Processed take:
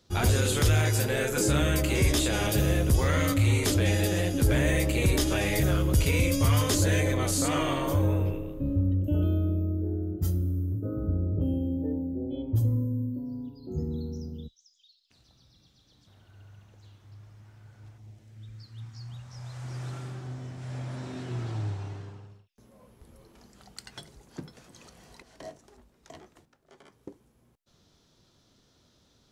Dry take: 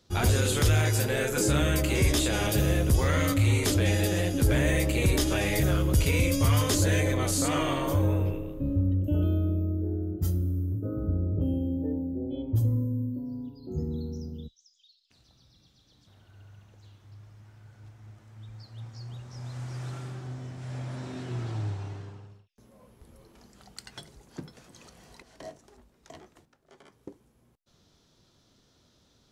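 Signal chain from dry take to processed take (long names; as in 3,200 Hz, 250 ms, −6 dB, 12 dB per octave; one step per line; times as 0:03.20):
0:17.97–0:19.63: parametric band 1,600 Hz → 230 Hz −13 dB 1 octave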